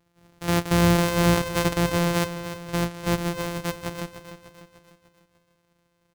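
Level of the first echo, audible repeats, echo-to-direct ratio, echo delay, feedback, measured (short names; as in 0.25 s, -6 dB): -11.0 dB, 5, -9.5 dB, 0.298 s, 51%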